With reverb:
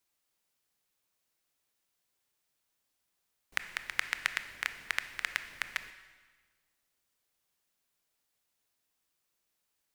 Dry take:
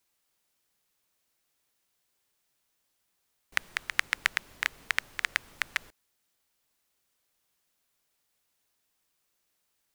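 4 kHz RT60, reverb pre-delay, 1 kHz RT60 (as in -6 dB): 1.3 s, 21 ms, 1.4 s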